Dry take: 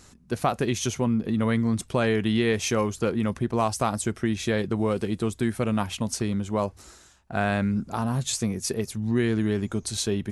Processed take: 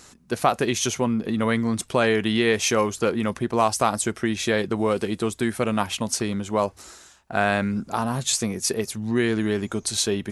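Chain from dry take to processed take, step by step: low shelf 210 Hz -11 dB; gain +5.5 dB

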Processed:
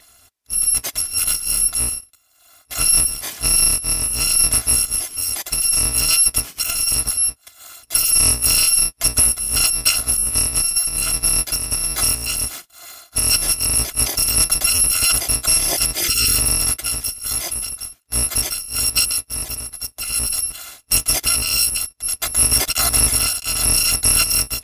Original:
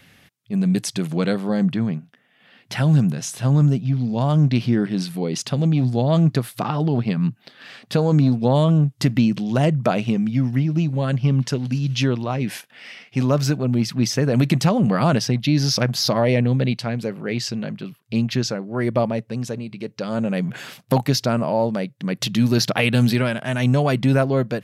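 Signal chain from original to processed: FFT order left unsorted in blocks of 256 samples; spectral gain 16.01–16.35, 520–1200 Hz -13 dB; gain +4 dB; MP3 96 kbps 32000 Hz

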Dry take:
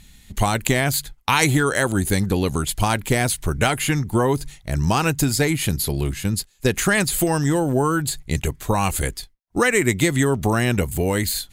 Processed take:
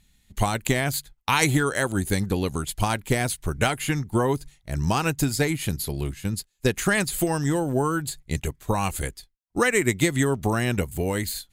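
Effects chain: upward expander 1.5:1, over -38 dBFS; gain -2 dB

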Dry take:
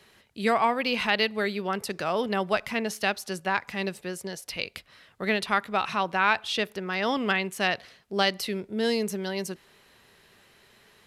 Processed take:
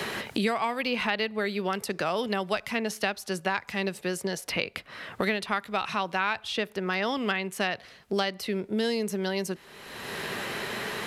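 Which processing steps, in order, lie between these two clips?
three-band squash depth 100%; gain -2.5 dB

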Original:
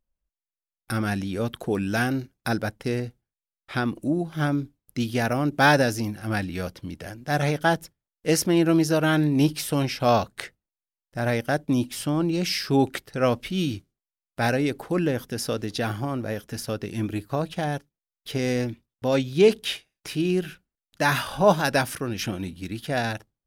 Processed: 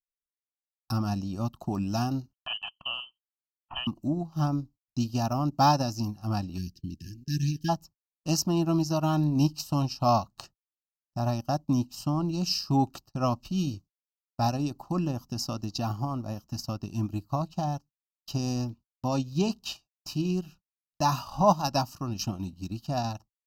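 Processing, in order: gate -43 dBFS, range -28 dB; 2.33–3.87 inverted band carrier 3200 Hz; fixed phaser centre 2300 Hz, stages 8; transient shaper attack +2 dB, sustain -7 dB; Butterworth band-stop 2100 Hz, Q 1.4; 6.58–7.69 spectral delete 410–1600 Hz

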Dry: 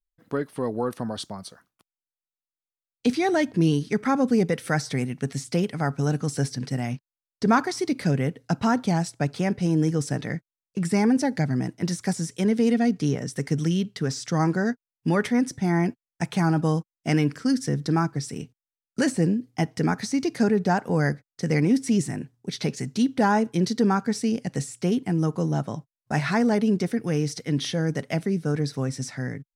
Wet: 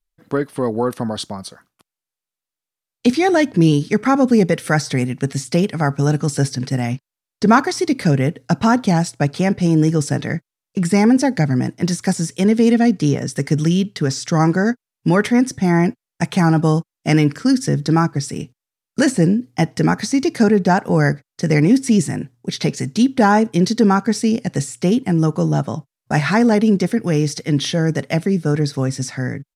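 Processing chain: downsampling 32000 Hz; gain +7.5 dB

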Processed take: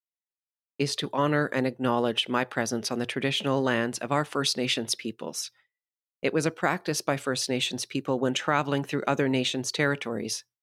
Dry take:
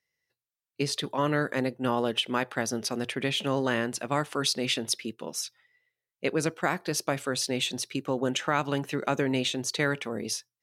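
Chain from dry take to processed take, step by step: expander -50 dBFS; high shelf 6800 Hz -4.5 dB; gain +2 dB

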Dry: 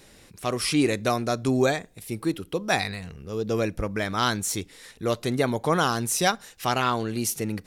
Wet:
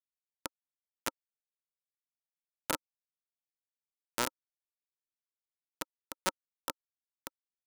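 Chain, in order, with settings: bell 330 Hz -13.5 dB 1.3 oct; compressor 6:1, threshold -34 dBFS, peak gain reduction 15 dB; bit-crush 4-bit; small resonant body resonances 300/530/920/1300 Hz, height 14 dB, ringing for 25 ms; gain +4.5 dB

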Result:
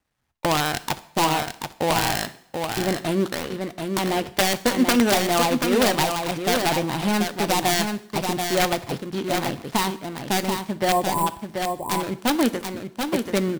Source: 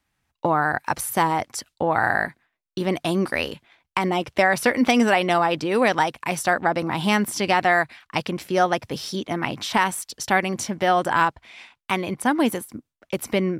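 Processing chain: switching dead time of 0.21 ms; spectral delete 10.92–11.27, 1100–7200 Hz; wrapped overs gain 10 dB; on a send: echo 0.734 s -5.5 dB; on the sum: two-slope reverb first 0.61 s, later 1.8 s, from -22 dB, DRR 13.5 dB

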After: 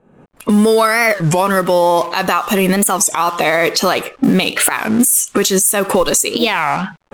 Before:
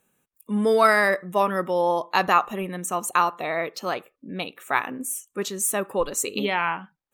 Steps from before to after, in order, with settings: G.711 law mismatch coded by mu; recorder AGC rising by 62 dB/s; low-pass opened by the level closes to 710 Hz, open at -18 dBFS; high shelf 3500 Hz +11 dB; compressor, threshold -17 dBFS, peak gain reduction 9.5 dB; maximiser +12 dB; record warp 33 1/3 rpm, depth 250 cents; gain -2.5 dB

